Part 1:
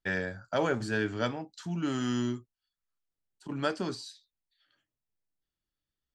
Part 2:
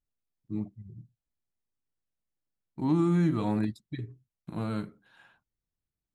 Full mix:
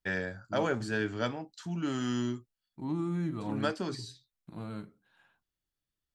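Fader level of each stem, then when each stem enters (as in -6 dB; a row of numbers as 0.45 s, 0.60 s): -1.5 dB, -8.0 dB; 0.00 s, 0.00 s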